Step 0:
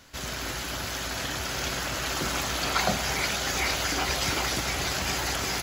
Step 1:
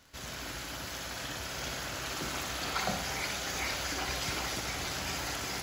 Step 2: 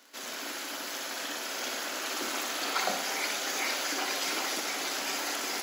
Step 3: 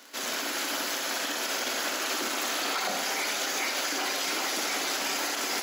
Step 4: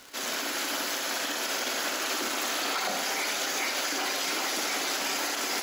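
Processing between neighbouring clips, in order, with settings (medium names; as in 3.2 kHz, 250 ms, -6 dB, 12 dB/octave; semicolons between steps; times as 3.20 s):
crackle 11 per s -38 dBFS; flutter echo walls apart 10.5 m, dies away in 0.52 s; trim -8 dB
steep high-pass 240 Hz 36 dB/octave; treble shelf 9.8 kHz +3.5 dB; trim +3 dB
peak limiter -27.5 dBFS, peak gain reduction 10.5 dB; trim +7 dB
crackle 290 per s -38 dBFS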